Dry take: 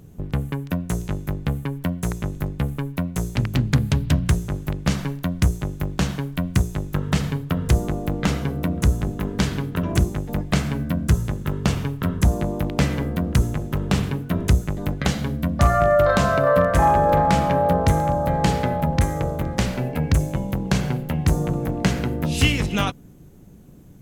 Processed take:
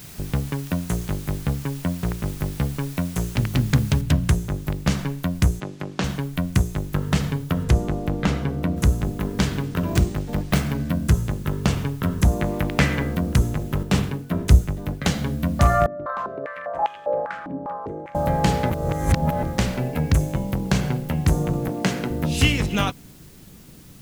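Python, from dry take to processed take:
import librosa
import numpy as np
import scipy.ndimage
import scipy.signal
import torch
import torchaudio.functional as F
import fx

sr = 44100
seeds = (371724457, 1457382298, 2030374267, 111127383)

y = fx.air_absorb(x, sr, metres=190.0, at=(1.39, 2.27))
y = fx.noise_floor_step(y, sr, seeds[0], at_s=4.01, before_db=-43, after_db=-52, tilt_db=0.0)
y = fx.bandpass_edges(y, sr, low_hz=200.0, high_hz=5700.0, at=(5.6, 6.04))
y = fx.high_shelf(y, sr, hz=fx.line((7.63, 9000.0), (8.76, 5500.0)), db=-10.5, at=(7.63, 8.76), fade=0.02)
y = fx.resample_bad(y, sr, factor=3, down='none', up='hold', at=(9.63, 10.9))
y = fx.peak_eq(y, sr, hz=1900.0, db=8.0, octaves=1.3, at=(12.4, 13.15))
y = fx.band_widen(y, sr, depth_pct=70, at=(13.83, 15.09))
y = fx.filter_held_bandpass(y, sr, hz=5.0, low_hz=270.0, high_hz=3000.0, at=(15.86, 18.15))
y = fx.highpass(y, sr, hz=170.0, slope=12, at=(21.68, 22.11))
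y = fx.edit(y, sr, fx.reverse_span(start_s=18.7, length_s=0.73), tone=tone)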